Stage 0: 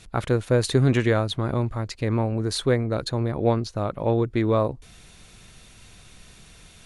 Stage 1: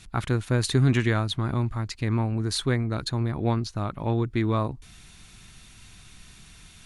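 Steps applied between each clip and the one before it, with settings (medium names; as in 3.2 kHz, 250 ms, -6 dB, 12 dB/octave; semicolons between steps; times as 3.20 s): peaking EQ 520 Hz -11.5 dB 0.77 oct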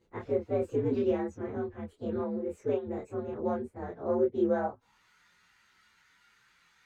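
frequency axis rescaled in octaves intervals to 122%; band-pass sweep 470 Hz -> 1.5 kHz, 4.46–5.08 s; chorus voices 6, 1 Hz, delay 26 ms, depth 3 ms; trim +8.5 dB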